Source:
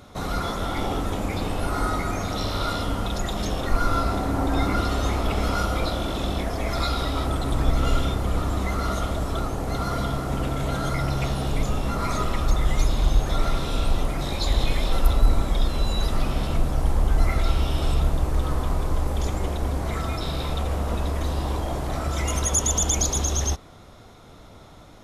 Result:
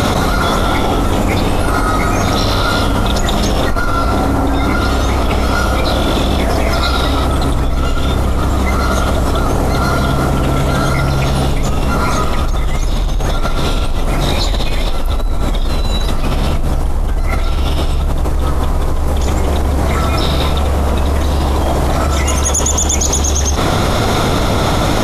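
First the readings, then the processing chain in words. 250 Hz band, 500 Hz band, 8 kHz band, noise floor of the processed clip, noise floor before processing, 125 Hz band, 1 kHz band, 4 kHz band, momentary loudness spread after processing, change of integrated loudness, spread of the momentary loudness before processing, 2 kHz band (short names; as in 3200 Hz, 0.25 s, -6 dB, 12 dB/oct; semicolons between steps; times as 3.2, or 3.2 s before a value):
+11.5 dB, +12.0 dB, +8.5 dB, -15 dBFS, -46 dBFS, +10.5 dB, +11.5 dB, +11.5 dB, 4 LU, +10.0 dB, 5 LU, +11.5 dB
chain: in parallel at -6 dB: soft clip -15 dBFS, distortion -15 dB; on the sum: fast leveller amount 100%; gain -4.5 dB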